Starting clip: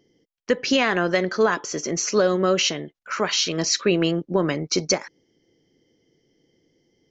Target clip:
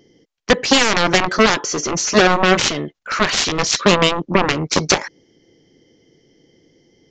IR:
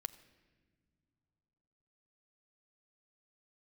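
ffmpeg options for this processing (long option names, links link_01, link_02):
-af "aeval=exprs='0.398*(cos(1*acos(clip(val(0)/0.398,-1,1)))-cos(1*PI/2))+0.158*(cos(7*acos(clip(val(0)/0.398,-1,1)))-cos(7*PI/2))':channel_layout=same,aresample=16000,aresample=44100,volume=5dB"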